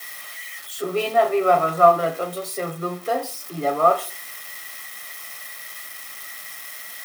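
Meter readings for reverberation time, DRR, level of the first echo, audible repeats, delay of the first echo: 0.45 s, 8.5 dB, none, none, none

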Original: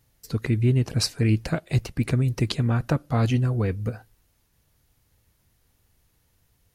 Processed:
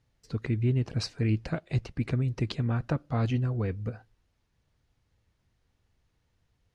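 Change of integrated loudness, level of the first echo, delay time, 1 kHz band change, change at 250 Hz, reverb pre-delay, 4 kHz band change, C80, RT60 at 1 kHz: -6.0 dB, none, none, -6.0 dB, -5.5 dB, none, -9.0 dB, none, none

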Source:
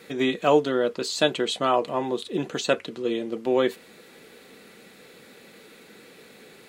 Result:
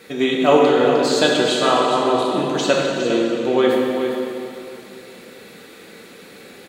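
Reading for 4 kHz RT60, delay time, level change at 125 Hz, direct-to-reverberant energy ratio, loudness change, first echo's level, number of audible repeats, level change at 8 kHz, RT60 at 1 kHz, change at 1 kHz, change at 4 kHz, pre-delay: 2.2 s, 0.408 s, +7.0 dB, -3.0 dB, +7.5 dB, -9.0 dB, 1, +7.5 dB, 2.7 s, +8.0 dB, +7.5 dB, 5 ms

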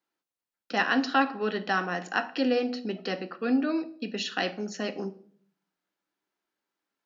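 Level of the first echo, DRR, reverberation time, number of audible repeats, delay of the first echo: none, 10.0 dB, 0.55 s, none, none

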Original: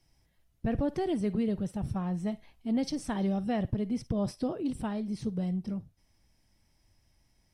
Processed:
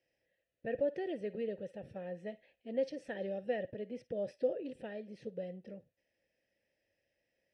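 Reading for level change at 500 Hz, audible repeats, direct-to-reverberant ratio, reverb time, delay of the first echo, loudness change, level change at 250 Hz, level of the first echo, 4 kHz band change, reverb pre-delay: 0.0 dB, none, none, none, none, -7.5 dB, -14.5 dB, none, -11.0 dB, none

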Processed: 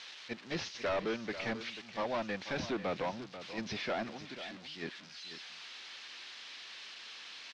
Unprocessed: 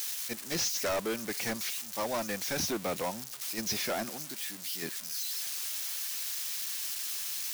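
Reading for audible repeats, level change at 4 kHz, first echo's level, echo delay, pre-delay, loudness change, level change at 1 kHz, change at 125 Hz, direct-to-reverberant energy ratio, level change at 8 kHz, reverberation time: 1, -6.5 dB, -12.5 dB, 0.489 s, none, -7.0 dB, -2.0 dB, -1.5 dB, none, -21.0 dB, none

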